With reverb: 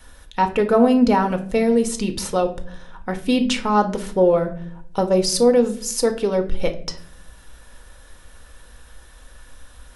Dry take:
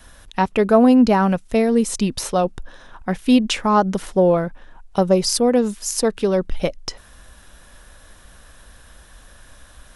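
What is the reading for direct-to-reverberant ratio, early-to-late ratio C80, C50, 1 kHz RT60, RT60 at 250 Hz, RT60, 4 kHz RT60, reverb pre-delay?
6.0 dB, 17.0 dB, 13.0 dB, 0.45 s, 1.0 s, 0.55 s, 0.35 s, 4 ms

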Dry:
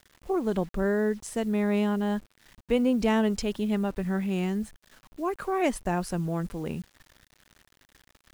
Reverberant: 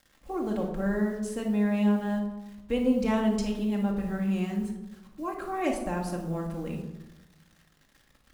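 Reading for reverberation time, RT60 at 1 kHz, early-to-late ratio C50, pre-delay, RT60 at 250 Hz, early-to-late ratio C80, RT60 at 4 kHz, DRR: 1.0 s, 1.0 s, 5.5 dB, 4 ms, 1.3 s, 8.5 dB, 0.60 s, -0.5 dB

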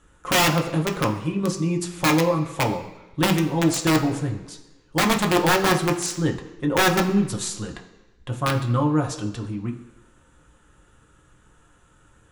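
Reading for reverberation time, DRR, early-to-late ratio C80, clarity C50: 1.1 s, 1.5 dB, 12.5 dB, 10.0 dB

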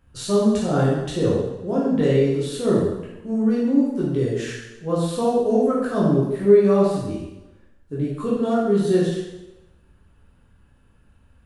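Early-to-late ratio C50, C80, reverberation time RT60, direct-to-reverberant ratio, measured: 0.5 dB, 3.0 dB, 1.0 s, -7.5 dB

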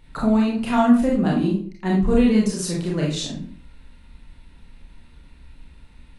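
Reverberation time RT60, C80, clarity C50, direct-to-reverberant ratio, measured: 0.45 s, 9.5 dB, 4.0 dB, -4.0 dB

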